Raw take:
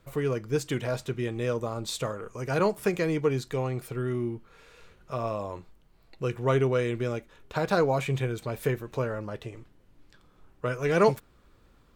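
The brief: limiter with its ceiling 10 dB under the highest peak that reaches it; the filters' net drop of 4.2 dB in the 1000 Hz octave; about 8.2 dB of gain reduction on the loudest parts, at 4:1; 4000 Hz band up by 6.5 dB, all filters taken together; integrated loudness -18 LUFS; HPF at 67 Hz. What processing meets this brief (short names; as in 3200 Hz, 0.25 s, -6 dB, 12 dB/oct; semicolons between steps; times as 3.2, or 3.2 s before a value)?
HPF 67 Hz; bell 1000 Hz -6 dB; bell 4000 Hz +8 dB; compressor 4:1, threshold -27 dBFS; gain +19 dB; limiter -7.5 dBFS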